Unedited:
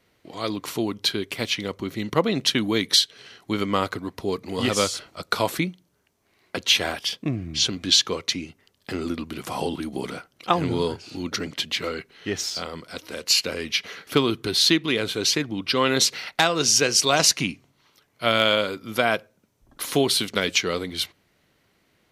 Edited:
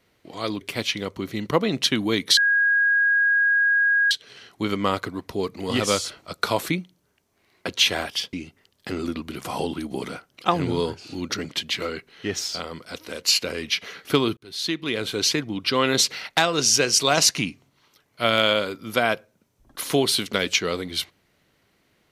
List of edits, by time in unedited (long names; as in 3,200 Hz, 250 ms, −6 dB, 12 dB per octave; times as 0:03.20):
0:00.61–0:01.24: remove
0:03.00: insert tone 1,640 Hz −16 dBFS 1.74 s
0:07.22–0:08.35: remove
0:14.39–0:15.16: fade in